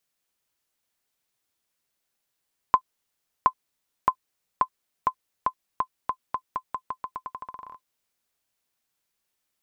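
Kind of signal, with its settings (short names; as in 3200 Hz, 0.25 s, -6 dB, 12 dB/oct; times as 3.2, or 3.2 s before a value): bouncing ball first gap 0.72 s, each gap 0.86, 1030 Hz, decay 73 ms -5.5 dBFS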